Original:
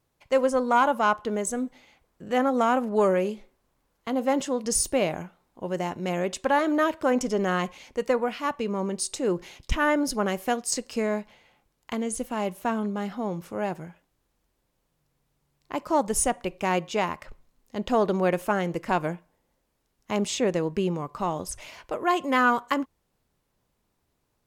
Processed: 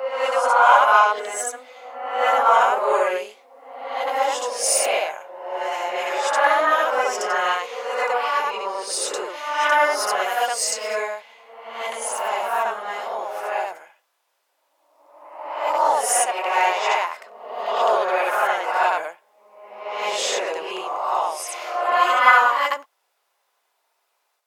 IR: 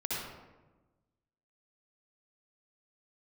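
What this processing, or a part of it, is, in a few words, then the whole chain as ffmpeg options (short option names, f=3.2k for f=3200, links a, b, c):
ghost voice: -filter_complex "[0:a]areverse[a];[1:a]atrim=start_sample=2205[b];[a][b]afir=irnorm=-1:irlink=0,areverse,highpass=f=630:w=0.5412,highpass=f=630:w=1.3066,volume=4.5dB"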